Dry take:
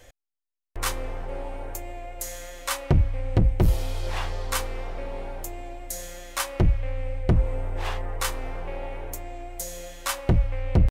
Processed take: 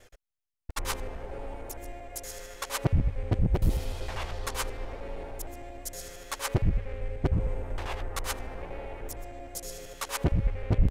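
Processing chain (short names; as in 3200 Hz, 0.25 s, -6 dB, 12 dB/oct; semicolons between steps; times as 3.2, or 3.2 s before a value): local time reversal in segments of 77 ms; harmoniser -4 st -5 dB; gain -5 dB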